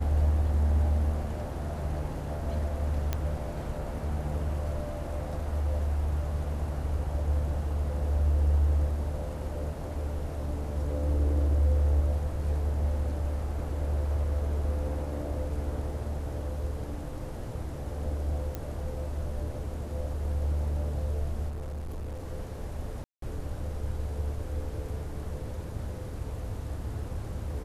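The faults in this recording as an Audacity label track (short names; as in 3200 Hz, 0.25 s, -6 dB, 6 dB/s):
3.130000	3.130000	pop -15 dBFS
18.550000	18.550000	pop -20 dBFS
21.480000	22.260000	clipped -33 dBFS
23.040000	23.220000	gap 0.183 s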